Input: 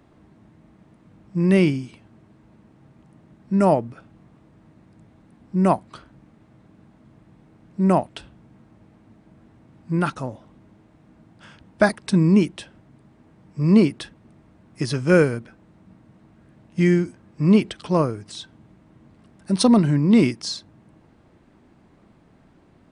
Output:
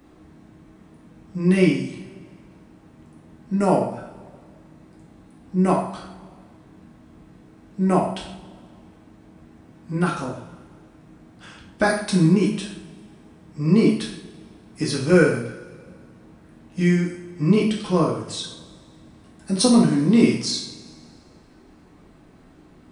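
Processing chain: treble shelf 6.4 kHz +7 dB; in parallel at -1.5 dB: compression, threshold -30 dBFS, peak gain reduction 18.5 dB; on the sum: two-slope reverb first 0.55 s, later 2 s, from -18 dB, DRR -3 dB; trim -6 dB

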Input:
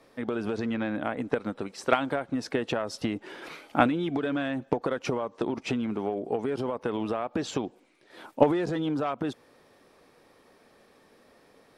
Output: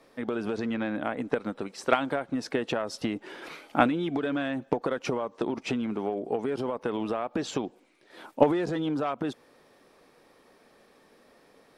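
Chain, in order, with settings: peaking EQ 91 Hz -5.5 dB 0.88 oct

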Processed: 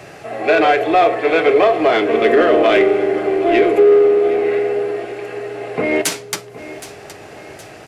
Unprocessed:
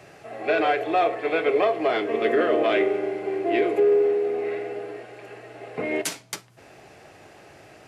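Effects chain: in parallel at -4 dB: saturation -24.5 dBFS, distortion -8 dB; on the sum: feedback delay 768 ms, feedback 47%, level -16 dB; trim +6.5 dB

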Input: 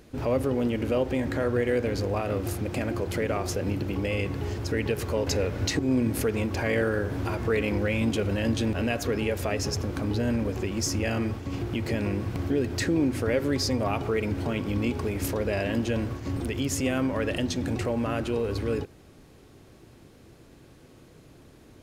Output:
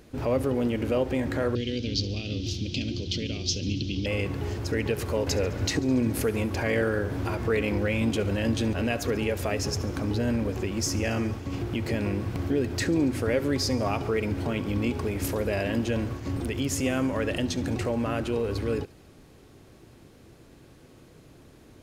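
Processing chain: 1.55–4.06 s: FFT filter 280 Hz 0 dB, 990 Hz -26 dB, 1.8 kHz -17 dB, 3.2 kHz +14 dB, 5.9 kHz +10 dB, 9.5 kHz -23 dB; feedback echo behind a high-pass 70 ms, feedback 72%, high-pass 3.4 kHz, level -18 dB

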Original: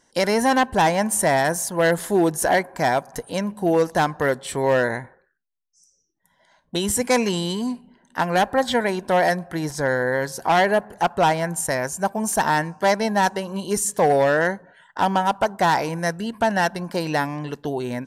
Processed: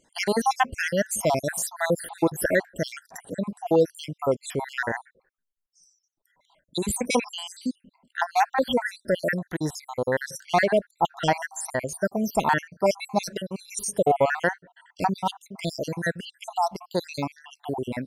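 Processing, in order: random holes in the spectrogram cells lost 67%

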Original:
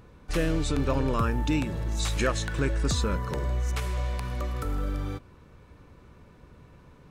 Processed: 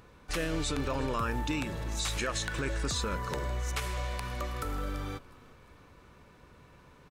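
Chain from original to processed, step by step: bass shelf 500 Hz -8.5 dB; peak limiter -24.5 dBFS, peak gain reduction 8 dB; on a send: frequency-shifting echo 351 ms, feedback 50%, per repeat -31 Hz, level -22 dB; on the sum: trim +2 dB

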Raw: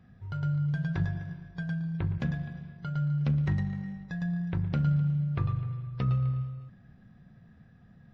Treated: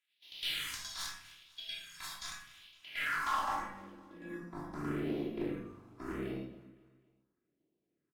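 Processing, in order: spectral contrast reduction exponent 0.18; gate -47 dBFS, range -8 dB; spectral noise reduction 14 dB; 3.21–4.40 s: comb 3.6 ms, depth 78%; in parallel at -2.5 dB: compression, threshold -43 dBFS, peak gain reduction 20.5 dB; on the sum: band-pass sweep 3.6 kHz -> 350 Hz, 2.65–3.96 s; Chebyshev shaper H 8 -32 dB, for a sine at -19 dBFS; phase shifter stages 4, 0.81 Hz, lowest notch 430–1400 Hz; hard clipper -33 dBFS, distortion -14 dB; on a send: feedback delay 255 ms, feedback 47%, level -20.5 dB; on the sum: simulated room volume 690 m³, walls furnished, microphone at 3 m

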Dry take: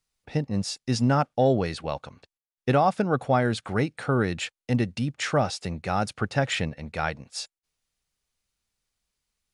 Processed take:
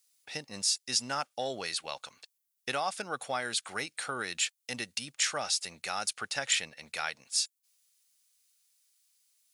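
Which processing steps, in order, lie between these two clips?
differentiator; in parallel at +1 dB: compression, threshold -47 dBFS, peak gain reduction 15.5 dB; on the sum: trim +5.5 dB

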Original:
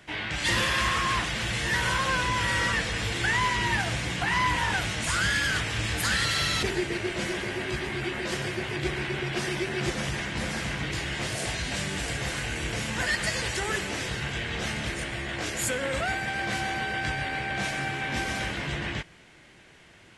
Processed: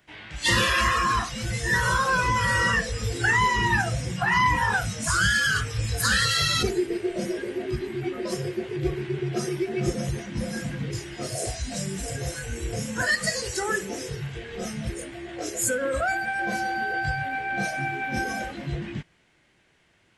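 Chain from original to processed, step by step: spectral noise reduction 15 dB; trim +5 dB

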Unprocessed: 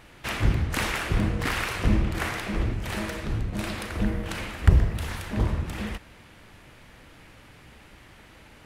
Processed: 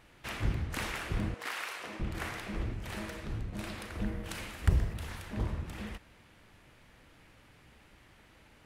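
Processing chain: 1.34–2.00 s: high-pass 550 Hz 12 dB/octave; 4.24–4.94 s: treble shelf 4.5 kHz +7.5 dB; trim -9 dB

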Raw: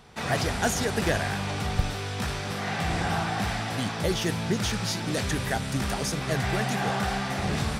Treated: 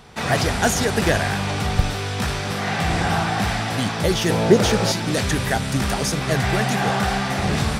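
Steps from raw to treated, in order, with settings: 4.30–4.92 s: peaking EQ 500 Hz +13 dB 1.4 oct; trim +6.5 dB

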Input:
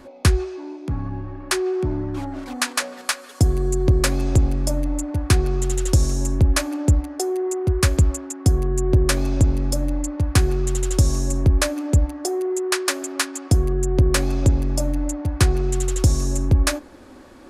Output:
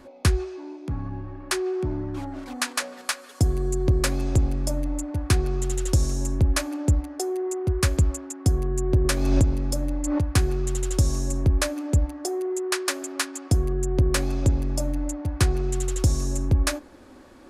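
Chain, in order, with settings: 9.02–10.24 s: swell ahead of each attack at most 33 dB/s; trim -4 dB

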